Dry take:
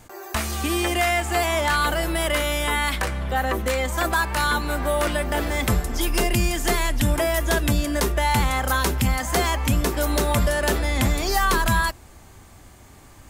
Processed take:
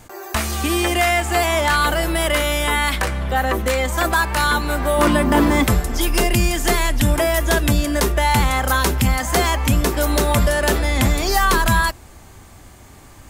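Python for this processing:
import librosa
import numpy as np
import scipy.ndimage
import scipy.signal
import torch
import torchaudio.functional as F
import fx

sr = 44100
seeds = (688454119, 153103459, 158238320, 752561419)

y = fx.small_body(x, sr, hz=(240.0, 1000.0), ring_ms=20, db=fx.line((4.97, 11.0), (5.62, 14.0)), at=(4.97, 5.62), fade=0.02)
y = F.gain(torch.from_numpy(y), 4.0).numpy()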